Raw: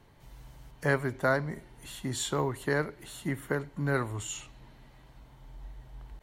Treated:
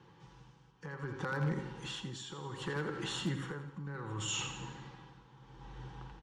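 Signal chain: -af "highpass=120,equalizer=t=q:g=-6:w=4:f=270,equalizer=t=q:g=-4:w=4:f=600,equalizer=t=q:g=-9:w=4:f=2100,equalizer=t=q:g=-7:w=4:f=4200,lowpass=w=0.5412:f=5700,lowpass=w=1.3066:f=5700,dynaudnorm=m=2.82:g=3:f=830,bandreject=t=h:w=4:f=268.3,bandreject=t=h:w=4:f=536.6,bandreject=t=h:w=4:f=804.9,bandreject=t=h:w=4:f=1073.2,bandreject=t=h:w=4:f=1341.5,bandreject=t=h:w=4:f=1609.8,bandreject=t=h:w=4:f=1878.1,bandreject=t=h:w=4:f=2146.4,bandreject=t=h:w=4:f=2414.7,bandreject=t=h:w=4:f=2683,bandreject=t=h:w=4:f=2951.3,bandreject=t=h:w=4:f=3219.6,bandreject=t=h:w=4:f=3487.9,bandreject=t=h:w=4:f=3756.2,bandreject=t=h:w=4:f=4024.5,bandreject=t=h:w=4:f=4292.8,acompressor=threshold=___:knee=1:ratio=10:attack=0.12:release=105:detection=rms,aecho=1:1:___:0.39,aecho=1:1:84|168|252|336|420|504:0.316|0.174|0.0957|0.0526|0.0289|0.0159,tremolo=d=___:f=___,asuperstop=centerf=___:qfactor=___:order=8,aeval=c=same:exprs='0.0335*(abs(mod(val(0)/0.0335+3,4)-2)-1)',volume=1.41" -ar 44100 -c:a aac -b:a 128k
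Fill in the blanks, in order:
0.0282, 6.1, 0.74, 0.66, 650, 4.8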